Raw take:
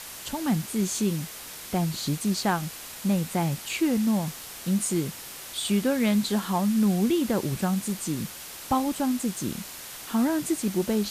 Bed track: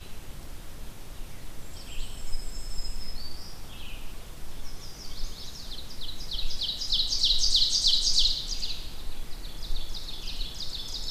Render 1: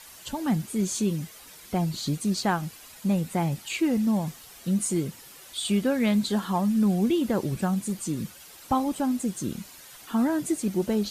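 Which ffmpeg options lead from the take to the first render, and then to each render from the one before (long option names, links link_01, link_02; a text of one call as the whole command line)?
ffmpeg -i in.wav -af "afftdn=noise_reduction=10:noise_floor=-41" out.wav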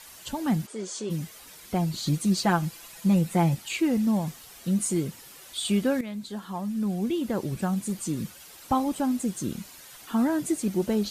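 ffmpeg -i in.wav -filter_complex "[0:a]asplit=3[link_01][link_02][link_03];[link_01]afade=type=out:start_time=0.66:duration=0.02[link_04];[link_02]highpass=420,equalizer=frequency=500:width_type=q:width=4:gain=6,equalizer=frequency=2500:width_type=q:width=4:gain=-7,equalizer=frequency=3900:width_type=q:width=4:gain=-5,equalizer=frequency=6500:width_type=q:width=4:gain=-5,lowpass=frequency=7500:width=0.5412,lowpass=frequency=7500:width=1.3066,afade=type=in:start_time=0.66:duration=0.02,afade=type=out:start_time=1.09:duration=0.02[link_05];[link_03]afade=type=in:start_time=1.09:duration=0.02[link_06];[link_04][link_05][link_06]amix=inputs=3:normalize=0,asettb=1/sr,asplit=3[link_07][link_08][link_09];[link_07]atrim=end=2.064[link_10];[link_08]atrim=start=2.06:end=3.55,asetpts=PTS-STARTPTS,afade=type=in:duration=0.004:curve=qsin,afade=type=out:start_time=1.486:duration=0.004:curve=qsin,aecho=1:1:5.9:0.65,atrim=end_sample=65709[link_11];[link_09]atrim=start=3.546[link_12];[link_10][link_11]acrossfade=duration=0.004:curve1=hsin:curve2=qsin[link_13];[link_13][link_12]acrossfade=duration=0.004:curve1=qsin:curve2=hsin,asplit=2[link_14][link_15];[link_14]atrim=end=6.01,asetpts=PTS-STARTPTS,afade=type=out:start_time=6.006:duration=0.004:curve=hsin:silence=0.188365[link_16];[link_15]atrim=start=6.01,asetpts=PTS-STARTPTS,afade=type=in:duration=2.01:silence=0.188365[link_17];[link_16][link_17]concat=n=2:v=0:a=1" out.wav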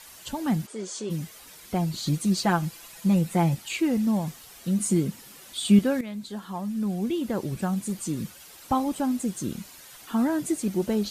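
ffmpeg -i in.wav -filter_complex "[0:a]asettb=1/sr,asplit=3[link_01][link_02][link_03];[link_01]atrim=end=4.804[link_04];[link_02]atrim=start=4.8:end=5.79,asetpts=PTS-STARTPTS,afade=type=in:duration=0.004:curve=qsin,afade=type=out:start_time=0.986:duration=0.004:curve=qsin,equalizer=frequency=210:width_type=o:width=0.77:gain=8.5[link_05];[link_03]atrim=start=5.786[link_06];[link_04][link_05]acrossfade=duration=0.004:curve1=hsin:curve2=qsin[link_07];[link_07][link_06]acrossfade=duration=0.004:curve1=qsin:curve2=hsin" out.wav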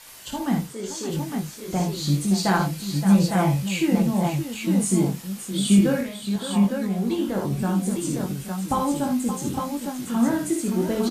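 ffmpeg -i in.wav -filter_complex "[0:a]asplit=2[link_01][link_02];[link_02]adelay=21,volume=-4.5dB[link_03];[link_01][link_03]amix=inputs=2:normalize=0,aecho=1:1:56|79|571|824|858:0.562|0.299|0.316|0.119|0.596" out.wav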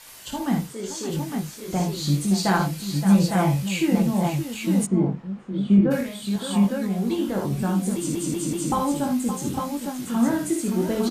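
ffmpeg -i in.wav -filter_complex "[0:a]asplit=3[link_01][link_02][link_03];[link_01]afade=type=out:start_time=4.85:duration=0.02[link_04];[link_02]lowpass=1300,afade=type=in:start_time=4.85:duration=0.02,afade=type=out:start_time=5.9:duration=0.02[link_05];[link_03]afade=type=in:start_time=5.9:duration=0.02[link_06];[link_04][link_05][link_06]amix=inputs=3:normalize=0,asplit=5[link_07][link_08][link_09][link_10][link_11];[link_07]atrim=end=8.152[link_12];[link_08]atrim=start=7.958:end=8.152[link_13];[link_09]atrim=start=7.958:end=8.152[link_14];[link_10]atrim=start=7.958:end=8.152[link_15];[link_11]atrim=start=8.718[link_16];[link_12][link_13]acrossfade=duration=0.004:curve1=hsin:curve2=hsin[link_17];[link_17][link_14]acrossfade=duration=0.004:curve1=hsin:curve2=hsin[link_18];[link_18][link_15]acrossfade=duration=0.004:curve1=hsin:curve2=hsin[link_19];[link_19][link_16]acrossfade=duration=0.004:curve1=hsin:curve2=hsin" out.wav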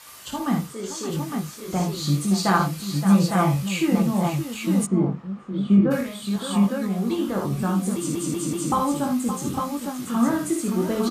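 ffmpeg -i in.wav -af "highpass=46,equalizer=frequency=1200:width=7.5:gain=12" out.wav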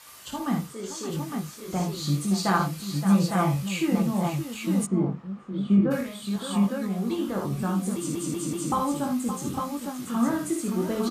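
ffmpeg -i in.wav -af "volume=-3.5dB" out.wav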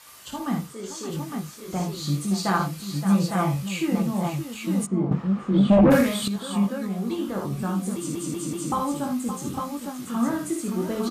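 ffmpeg -i in.wav -filter_complex "[0:a]asettb=1/sr,asplit=3[link_01][link_02][link_03];[link_01]atrim=end=5.114[link_04];[link_02]atrim=start=5.11:end=6.28,asetpts=PTS-STARTPTS,afade=type=in:duration=0.004:curve=qsin,afade=type=out:start_time=1.166:duration=0.004:curve=qsin,aeval=exprs='0.282*sin(PI/2*2.51*val(0)/0.282)':channel_layout=same[link_05];[link_03]atrim=start=6.276[link_06];[link_04][link_05]acrossfade=duration=0.004:curve1=hsin:curve2=qsin[link_07];[link_07][link_06]acrossfade=duration=0.004:curve1=qsin:curve2=hsin" out.wav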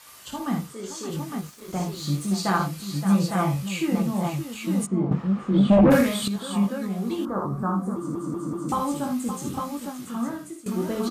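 ffmpeg -i in.wav -filter_complex "[0:a]asettb=1/sr,asplit=3[link_01][link_02][link_03];[link_01]atrim=end=1.404[link_04];[link_02]atrim=start=1.4:end=2.37,asetpts=PTS-STARTPTS,afade=type=in:duration=0.004:curve=qsin,afade=type=out:start_time=0.966:duration=0.004:curve=qsin,aeval=exprs='sgn(val(0))*max(abs(val(0))-0.00398,0)':channel_layout=same[link_05];[link_03]atrim=start=2.366[link_06];[link_04][link_05]acrossfade=duration=0.004:curve1=hsin:curve2=qsin[link_07];[link_07][link_06]acrossfade=duration=0.004:curve1=qsin:curve2=hsin,asettb=1/sr,asplit=3[link_08][link_09][link_10];[link_08]atrim=end=7.254[link_11];[link_09]atrim=start=7.25:end=8.69,asetpts=PTS-STARTPTS,afade=type=in:duration=0.004:curve=qsin,afade=type=out:start_time=1.436:duration=0.004:curve=qsin,highshelf=frequency=1800:width_type=q:width=3:gain=-14[link_12];[link_10]atrim=start=8.686[link_13];[link_11][link_12]acrossfade=duration=0.004:curve1=hsin:curve2=qsin[link_14];[link_14][link_13]acrossfade=duration=0.004:curve1=qsin:curve2=hsin,asplit=2[link_15][link_16];[link_15]atrim=end=10.66,asetpts=PTS-STARTPTS,afade=type=out:start_time=9.84:duration=0.82:silence=0.149624[link_17];[link_16]atrim=start=10.66,asetpts=PTS-STARTPTS,afade=type=in:duration=0.004:curve=hsin:silence=0.149624[link_18];[link_17][link_18]concat=n=2:v=0:a=1" out.wav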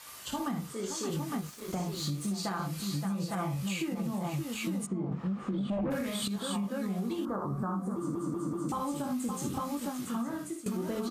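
ffmpeg -i in.wav -af "alimiter=limit=-20dB:level=0:latency=1:release=182,acompressor=threshold=-30dB:ratio=6" out.wav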